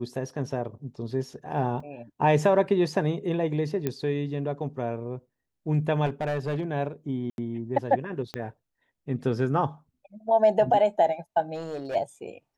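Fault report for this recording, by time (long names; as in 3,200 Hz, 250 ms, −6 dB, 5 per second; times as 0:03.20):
0:01.80: drop-out 3.3 ms
0:03.87: click −14 dBFS
0:06.05–0:06.64: clipping −24 dBFS
0:07.30–0:07.38: drop-out 81 ms
0:08.34: click −18 dBFS
0:11.54–0:11.96: clipping −28.5 dBFS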